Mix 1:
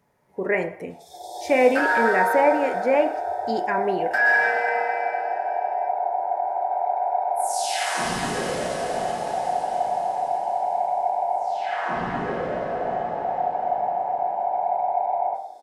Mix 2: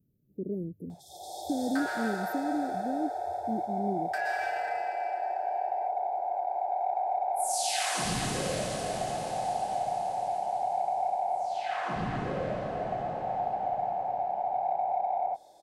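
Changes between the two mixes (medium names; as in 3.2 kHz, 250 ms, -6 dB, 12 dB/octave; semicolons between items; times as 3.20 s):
speech: add inverse Chebyshev band-stop 970–6100 Hz, stop band 60 dB; second sound: add high-pass 900 Hz 12 dB/octave; reverb: off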